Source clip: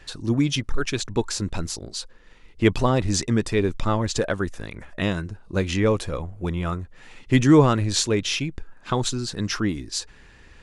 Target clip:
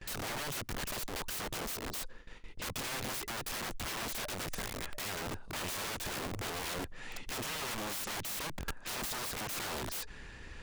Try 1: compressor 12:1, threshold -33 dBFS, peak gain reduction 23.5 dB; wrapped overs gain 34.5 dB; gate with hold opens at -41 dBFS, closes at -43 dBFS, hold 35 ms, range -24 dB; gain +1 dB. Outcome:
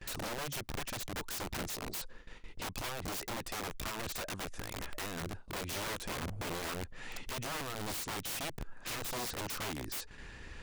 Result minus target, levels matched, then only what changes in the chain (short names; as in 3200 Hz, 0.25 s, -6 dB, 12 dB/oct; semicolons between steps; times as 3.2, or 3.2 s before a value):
compressor: peak gain reduction +5.5 dB
change: compressor 12:1, threshold -27 dBFS, peak gain reduction 18 dB